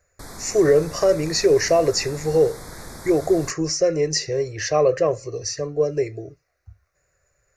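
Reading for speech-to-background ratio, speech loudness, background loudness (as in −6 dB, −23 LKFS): 17.5 dB, −21.0 LKFS, −38.5 LKFS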